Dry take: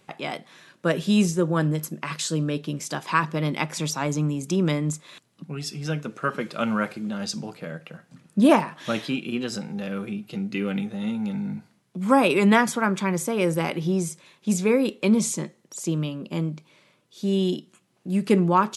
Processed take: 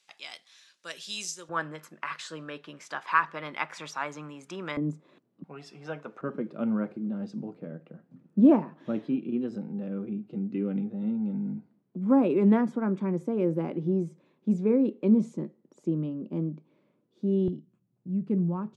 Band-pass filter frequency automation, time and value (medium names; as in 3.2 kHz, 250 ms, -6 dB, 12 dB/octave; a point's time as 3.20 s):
band-pass filter, Q 1.3
5.3 kHz
from 1.49 s 1.4 kHz
from 4.77 s 310 Hz
from 5.44 s 830 Hz
from 6.21 s 280 Hz
from 17.48 s 110 Hz